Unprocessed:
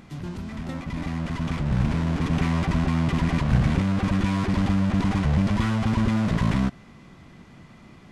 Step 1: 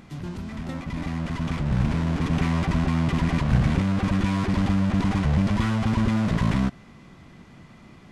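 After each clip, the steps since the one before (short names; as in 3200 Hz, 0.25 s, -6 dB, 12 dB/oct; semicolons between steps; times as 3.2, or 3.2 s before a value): nothing audible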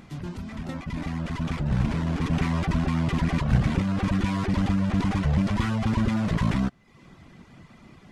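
reverb removal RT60 0.62 s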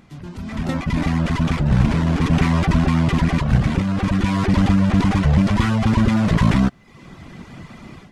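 AGC gain up to 14 dB; gain -2.5 dB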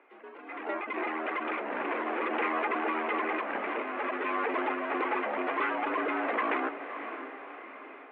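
mistuned SSB +67 Hz 350–2500 Hz; diffused feedback echo 0.568 s, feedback 45%, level -9.5 dB; gain -4 dB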